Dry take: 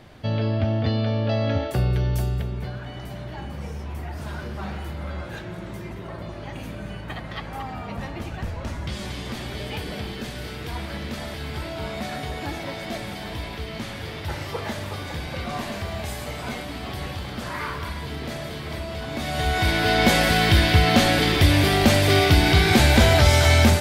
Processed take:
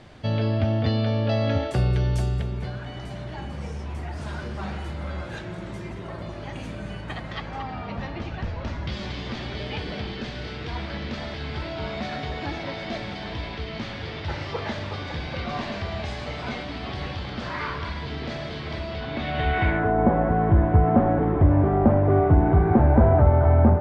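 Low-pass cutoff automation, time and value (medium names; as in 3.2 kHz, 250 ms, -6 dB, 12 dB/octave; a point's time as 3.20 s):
low-pass 24 dB/octave
7.21 s 8.9 kHz
7.67 s 5.2 kHz
18.85 s 5.2 kHz
19.64 s 2.5 kHz
19.93 s 1.1 kHz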